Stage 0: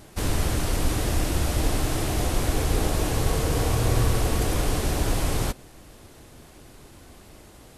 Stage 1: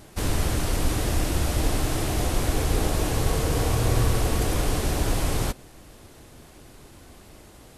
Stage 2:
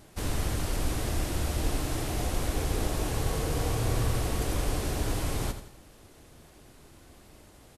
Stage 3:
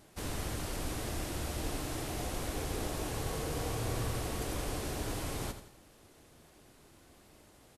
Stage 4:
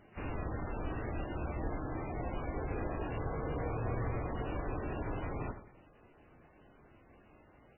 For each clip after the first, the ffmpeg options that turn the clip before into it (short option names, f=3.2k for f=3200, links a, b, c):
-af anull
-af "aecho=1:1:85|170|255|340:0.299|0.125|0.0527|0.0221,volume=-6dB"
-af "lowshelf=f=97:g=-7,volume=-4.5dB"
-ar 12000 -c:a libmp3lame -b:a 8k